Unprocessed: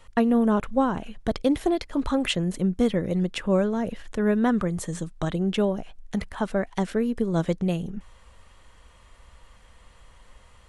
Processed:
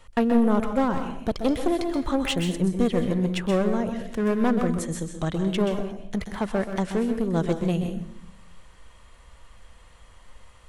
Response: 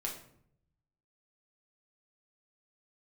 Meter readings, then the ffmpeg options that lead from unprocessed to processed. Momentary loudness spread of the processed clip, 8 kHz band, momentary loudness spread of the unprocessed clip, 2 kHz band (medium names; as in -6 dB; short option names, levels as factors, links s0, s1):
8 LU, +1.5 dB, 9 LU, 0.0 dB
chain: -filter_complex "[0:a]aeval=exprs='clip(val(0),-1,0.0631)':c=same,asplit=2[s0][s1];[1:a]atrim=start_sample=2205,highshelf=f=6600:g=7.5,adelay=127[s2];[s1][s2]afir=irnorm=-1:irlink=0,volume=0.398[s3];[s0][s3]amix=inputs=2:normalize=0"